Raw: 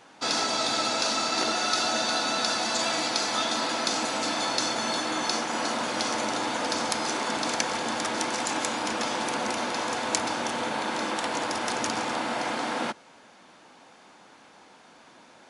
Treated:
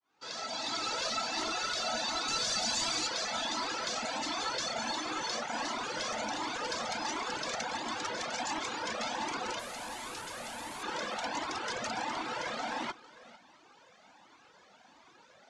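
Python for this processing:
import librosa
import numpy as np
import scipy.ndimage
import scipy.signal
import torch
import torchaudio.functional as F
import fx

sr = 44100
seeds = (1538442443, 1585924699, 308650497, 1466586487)

p1 = fx.fade_in_head(x, sr, length_s=0.94)
p2 = (np.mod(10.0 ** (20.5 / 20.0) * p1 + 1.0, 2.0) - 1.0) / 10.0 ** (20.5 / 20.0)
p3 = p1 + (p2 * librosa.db_to_amplitude(-6.0))
p4 = fx.dereverb_blind(p3, sr, rt60_s=0.79)
p5 = fx.bass_treble(p4, sr, bass_db=7, treble_db=10, at=(2.28, 3.07))
p6 = fx.resample_bad(p5, sr, factor=4, down='filtered', up='zero_stuff', at=(9.59, 10.83))
p7 = np.clip(p6, -10.0 ** (-20.5 / 20.0), 10.0 ** (-20.5 / 20.0))
p8 = scipy.signal.sosfilt(scipy.signal.butter(4, 7300.0, 'lowpass', fs=sr, output='sos'), p7)
p9 = fx.low_shelf(p8, sr, hz=340.0, db=-2.5)
p10 = p9 + fx.echo_single(p9, sr, ms=451, db=-18.0, dry=0)
p11 = fx.comb_cascade(p10, sr, direction='rising', hz=1.4)
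y = p11 * librosa.db_to_amplitude(-3.0)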